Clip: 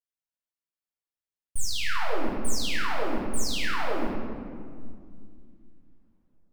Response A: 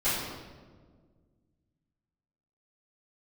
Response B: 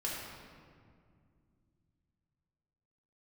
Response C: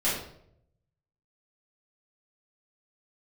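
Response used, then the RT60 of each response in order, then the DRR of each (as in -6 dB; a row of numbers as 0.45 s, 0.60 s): B; 1.6 s, 2.2 s, 0.70 s; -16.5 dB, -6.0 dB, -10.5 dB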